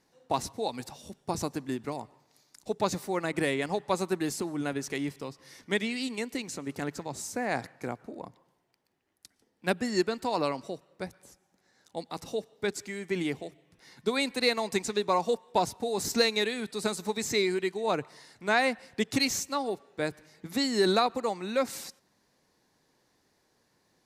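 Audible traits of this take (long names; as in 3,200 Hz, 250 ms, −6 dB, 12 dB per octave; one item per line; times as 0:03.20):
background noise floor −72 dBFS
spectral slope −3.5 dB per octave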